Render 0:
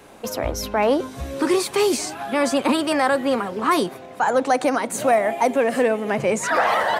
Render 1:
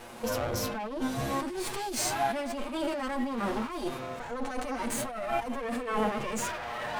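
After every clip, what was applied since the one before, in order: comb filter that takes the minimum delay 8.4 ms; compressor with a negative ratio -30 dBFS, ratio -1; harmonic-percussive split percussive -16 dB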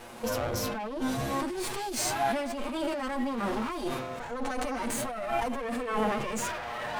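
decay stretcher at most 39 dB/s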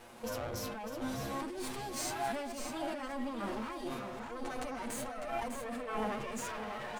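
delay 602 ms -7.5 dB; trim -8 dB

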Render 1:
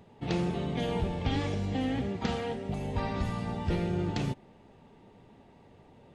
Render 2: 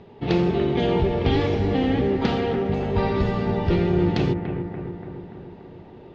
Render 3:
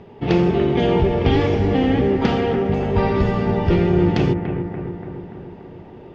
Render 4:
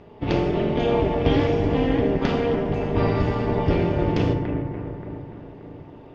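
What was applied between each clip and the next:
low-pass 5 kHz 24 dB/octave; peaking EQ 390 Hz +8.5 dB 0.31 oct; bucket-brigade echo 289 ms, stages 4096, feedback 62%, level -7.5 dB; trim +7.5 dB
peaking EQ 4 kHz -7.5 dB 0.3 oct; trim +4 dB
AM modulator 220 Hz, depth 70%; FDN reverb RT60 0.64 s, low-frequency decay 1.55×, high-frequency decay 0.9×, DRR 5.5 dB; trim -1 dB

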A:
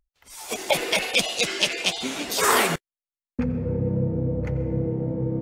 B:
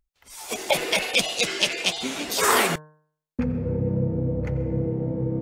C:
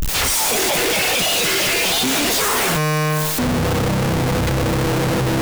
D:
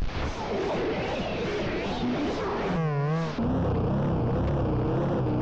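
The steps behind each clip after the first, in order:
de-hum 153.1 Hz, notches 12
one-bit comparator; trim +7.5 dB
one-bit delta coder 32 kbps, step -36 dBFS; wow and flutter 130 cents; pre-echo 129 ms -13 dB; trim -6.5 dB

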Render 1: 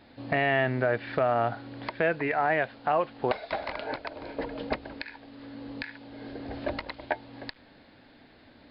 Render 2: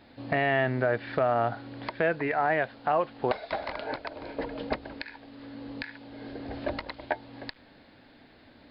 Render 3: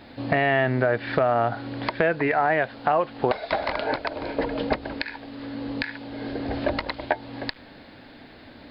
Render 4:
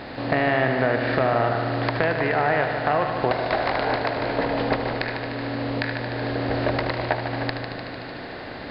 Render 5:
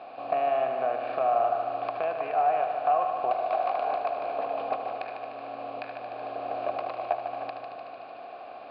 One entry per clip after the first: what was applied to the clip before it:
dynamic bell 2.5 kHz, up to -3 dB, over -43 dBFS
compression 2:1, threshold -30 dBFS, peak gain reduction 5.5 dB; trim +9 dB
spectral levelling over time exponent 0.6; multi-head delay 75 ms, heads first and second, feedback 72%, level -11 dB; trim -3.5 dB
vowel filter a; trim +2.5 dB

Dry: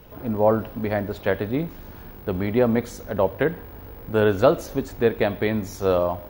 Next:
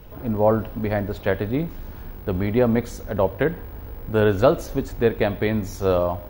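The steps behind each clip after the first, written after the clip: bass shelf 77 Hz +10 dB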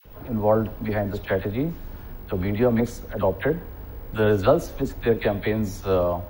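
phase dispersion lows, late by 53 ms, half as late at 1 kHz; trim -1.5 dB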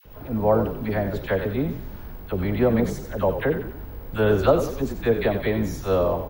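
frequency-shifting echo 92 ms, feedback 43%, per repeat -42 Hz, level -9 dB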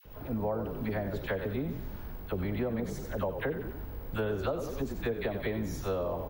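compression 6:1, threshold -25 dBFS, peak gain reduction 12 dB; trim -4 dB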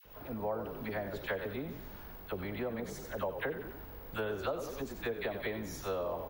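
bass shelf 340 Hz -10.5 dB

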